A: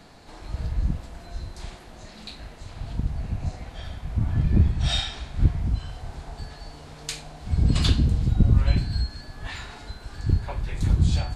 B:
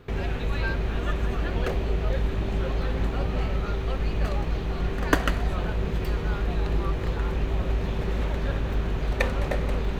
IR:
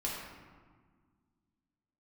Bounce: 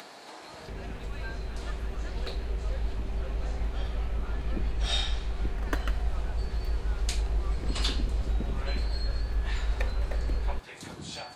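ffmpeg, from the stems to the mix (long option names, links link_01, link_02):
-filter_complex "[0:a]highpass=390,volume=-3.5dB[link_01];[1:a]asubboost=boost=4.5:cutoff=63,adelay=600,volume=-11dB[link_02];[link_01][link_02]amix=inputs=2:normalize=0,acompressor=mode=upward:threshold=-38dB:ratio=2.5"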